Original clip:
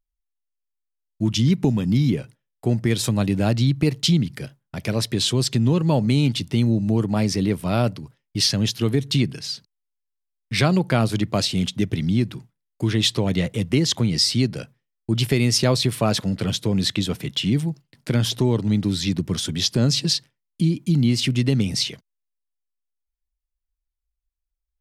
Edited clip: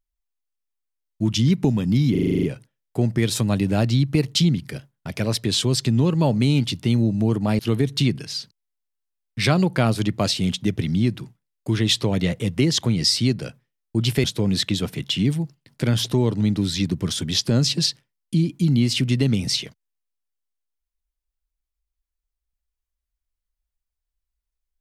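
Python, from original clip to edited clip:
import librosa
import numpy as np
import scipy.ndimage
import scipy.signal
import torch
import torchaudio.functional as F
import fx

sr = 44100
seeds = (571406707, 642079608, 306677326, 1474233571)

y = fx.edit(x, sr, fx.stutter(start_s=2.11, slice_s=0.04, count=9),
    fx.cut(start_s=7.27, length_s=1.46),
    fx.cut(start_s=15.38, length_s=1.13), tone=tone)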